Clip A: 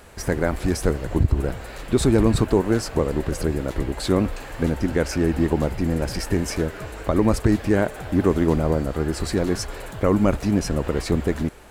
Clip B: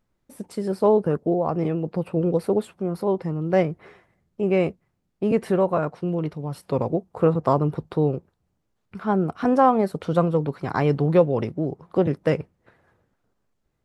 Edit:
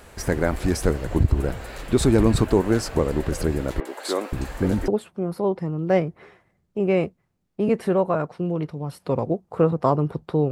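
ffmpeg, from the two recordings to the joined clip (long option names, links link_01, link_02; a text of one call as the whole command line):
ffmpeg -i cue0.wav -i cue1.wav -filter_complex "[0:a]asettb=1/sr,asplit=3[link_01][link_02][link_03];[link_01]atrim=end=3.804[link_04];[link_02]atrim=start=3.8:end=4.88,asetpts=PTS-STARTPTS,afade=type=in:duration=0.004:curve=qsin,afade=type=out:start_time=1.076:duration=0.004:curve=qsin,acrossover=split=350|2600[link_05][link_06][link_07];[link_07]adelay=50[link_08];[link_05]adelay=520[link_09];[link_09][link_06][link_08]amix=inputs=3:normalize=0,atrim=end_sample=47628[link_10];[link_03]atrim=start=4.876[link_11];[link_04][link_10]acrossfade=duration=0.004:curve1=hsin:curve2=qsin[link_12];[link_12][link_11]acrossfade=duration=0.004:curve1=qsin:curve2=hsin,apad=whole_dur=10.51,atrim=end=10.51,atrim=end=4.882[link_13];[1:a]atrim=start=2.508:end=8.14[link_14];[link_13][link_14]acrossfade=duration=0.004:curve1=hsin:curve2=hsin" out.wav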